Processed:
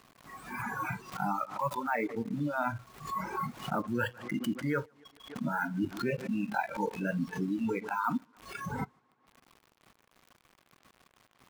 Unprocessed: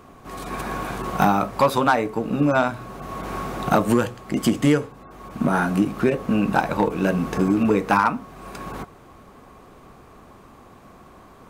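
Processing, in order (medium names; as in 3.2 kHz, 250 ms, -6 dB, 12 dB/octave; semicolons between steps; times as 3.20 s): ten-band graphic EQ 125 Hz +9 dB, 250 Hz +6 dB, 1 kHz +8 dB, 2 kHz +10 dB; reverb removal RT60 1.3 s; reverse; compression 12:1, threshold -25 dBFS, peak gain reduction 20.5 dB; reverse; word length cut 6-bit, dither none; on a send: tape echo 147 ms, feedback 70%, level -17 dB, low-pass 4.7 kHz; on the sum: spectral noise reduction 18 dB; swell ahead of each attack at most 110 dB/s; trim -3.5 dB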